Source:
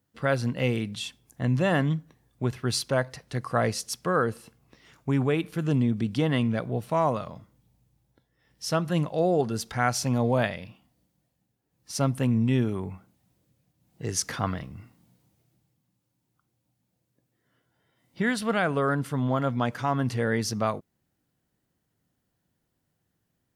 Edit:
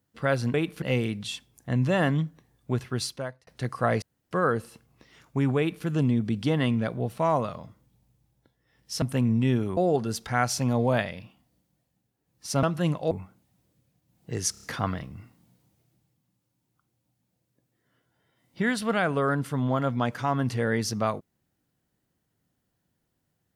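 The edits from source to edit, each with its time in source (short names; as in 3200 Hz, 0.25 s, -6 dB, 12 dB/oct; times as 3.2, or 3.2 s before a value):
2.54–3.19 fade out
3.74–4.03 room tone
5.3–5.58 copy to 0.54
8.74–9.22 swap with 12.08–12.83
14.23 stutter 0.03 s, 5 plays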